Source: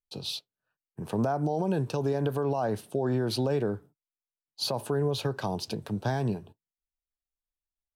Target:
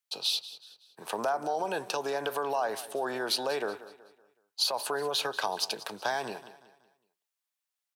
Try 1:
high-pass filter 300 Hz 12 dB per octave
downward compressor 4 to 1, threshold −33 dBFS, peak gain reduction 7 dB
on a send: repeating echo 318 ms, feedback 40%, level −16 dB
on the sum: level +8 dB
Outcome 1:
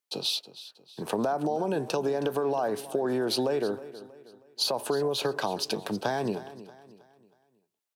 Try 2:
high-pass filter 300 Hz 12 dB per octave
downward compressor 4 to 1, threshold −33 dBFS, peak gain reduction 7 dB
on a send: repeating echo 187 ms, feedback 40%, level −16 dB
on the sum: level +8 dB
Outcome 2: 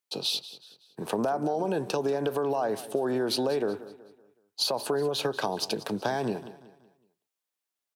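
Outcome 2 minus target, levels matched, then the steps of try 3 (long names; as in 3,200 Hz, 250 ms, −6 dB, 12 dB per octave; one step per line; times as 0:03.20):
250 Hz band +9.0 dB
high-pass filter 830 Hz 12 dB per octave
downward compressor 4 to 1, threshold −33 dBFS, peak gain reduction 6 dB
on a send: repeating echo 187 ms, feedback 40%, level −16 dB
on the sum: level +8 dB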